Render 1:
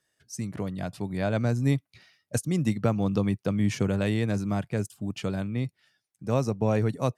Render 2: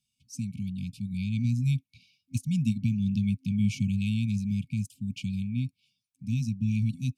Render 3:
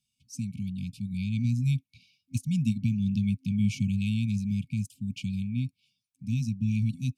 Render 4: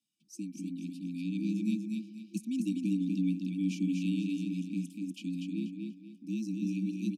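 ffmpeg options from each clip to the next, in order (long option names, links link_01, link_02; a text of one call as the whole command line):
ffmpeg -i in.wav -af "afftfilt=real='re*(1-between(b*sr/4096,260,2200))':imag='im*(1-between(b*sr/4096,260,2200))':win_size=4096:overlap=0.75,deesser=0.6,highshelf=frequency=4000:gain=-5.5" out.wav
ffmpeg -i in.wav -af anull out.wav
ffmpeg -i in.wav -af "aecho=1:1:242|484|726|968:0.631|0.196|0.0606|0.0188,afreqshift=80,volume=-6.5dB" out.wav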